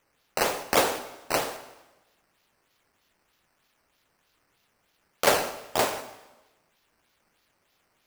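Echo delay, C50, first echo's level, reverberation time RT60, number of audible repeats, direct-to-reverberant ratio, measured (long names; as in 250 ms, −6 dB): no echo audible, 12.0 dB, no echo audible, 1.1 s, no echo audible, 9.5 dB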